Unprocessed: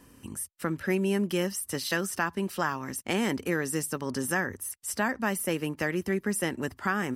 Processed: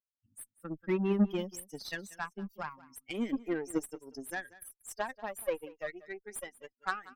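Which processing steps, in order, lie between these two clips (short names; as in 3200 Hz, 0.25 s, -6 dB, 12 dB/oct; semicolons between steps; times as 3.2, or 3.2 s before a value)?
per-bin expansion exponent 3; high-pass sweep 220 Hz -> 660 Hz, 2.41–6.39; added harmonics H 3 -16 dB, 8 -29 dB, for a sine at -16 dBFS; on a send: echo 0.187 s -19.5 dB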